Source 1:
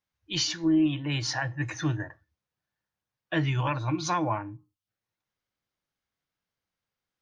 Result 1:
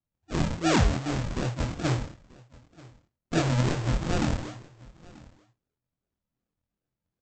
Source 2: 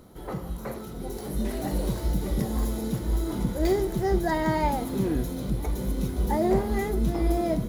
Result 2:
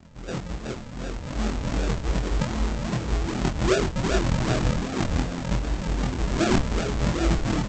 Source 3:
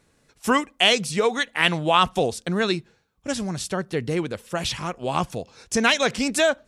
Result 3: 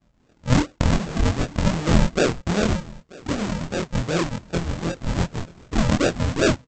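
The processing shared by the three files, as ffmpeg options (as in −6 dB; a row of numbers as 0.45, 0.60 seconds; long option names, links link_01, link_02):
-filter_complex "[0:a]aresample=16000,acrusher=samples=30:mix=1:aa=0.000001:lfo=1:lforange=30:lforate=2.6,aresample=44100,asplit=2[link_01][link_02];[link_02]adelay=24,volume=-2.5dB[link_03];[link_01][link_03]amix=inputs=2:normalize=0,aecho=1:1:935:0.0708"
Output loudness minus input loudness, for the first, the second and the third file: +0.5, +1.5, −0.5 LU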